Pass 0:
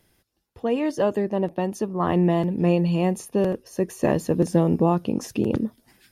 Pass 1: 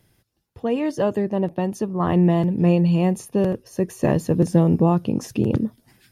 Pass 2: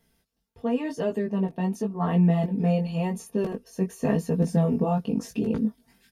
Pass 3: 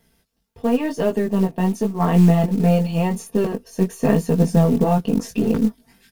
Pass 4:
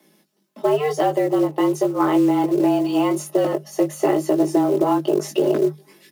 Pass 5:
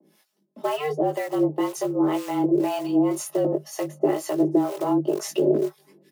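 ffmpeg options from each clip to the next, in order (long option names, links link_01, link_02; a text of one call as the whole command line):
ffmpeg -i in.wav -af "equalizer=frequency=120:width_type=o:width=1.1:gain=8.5" out.wav
ffmpeg -i in.wav -af "aecho=1:1:4.4:0.79,flanger=delay=17.5:depth=3.9:speed=0.92,volume=-4dB" out.wav
ffmpeg -i in.wav -af "aeval=exprs='if(lt(val(0),0),0.708*val(0),val(0))':channel_layout=same,acrusher=bits=7:mode=log:mix=0:aa=0.000001,volume=8dB" out.wav
ffmpeg -i in.wav -af "acompressor=threshold=-18dB:ratio=6,afreqshift=150,volume=4dB" out.wav
ffmpeg -i in.wav -filter_complex "[0:a]acrossover=split=640[link_01][link_02];[link_01]aeval=exprs='val(0)*(1-1/2+1/2*cos(2*PI*2*n/s))':channel_layout=same[link_03];[link_02]aeval=exprs='val(0)*(1-1/2-1/2*cos(2*PI*2*n/s))':channel_layout=same[link_04];[link_03][link_04]amix=inputs=2:normalize=0,volume=1dB" out.wav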